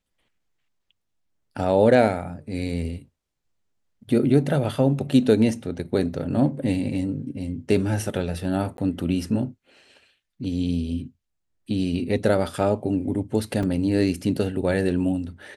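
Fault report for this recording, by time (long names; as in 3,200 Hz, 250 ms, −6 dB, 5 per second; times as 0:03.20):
0:08.77–0:08.78: drop-out 12 ms
0:13.63: drop-out 3.9 ms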